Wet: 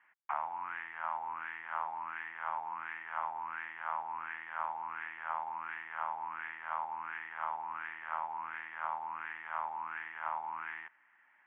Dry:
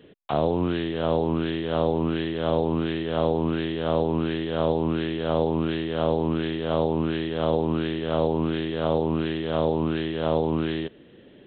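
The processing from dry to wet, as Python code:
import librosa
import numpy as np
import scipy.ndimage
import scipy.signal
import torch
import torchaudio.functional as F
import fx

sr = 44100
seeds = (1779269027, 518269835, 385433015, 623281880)

y = scipy.signal.sosfilt(scipy.signal.ellip(3, 1.0, 40, [880.0, 2200.0], 'bandpass', fs=sr, output='sos'), x)
y = y * librosa.db_to_amplitude(-1.0)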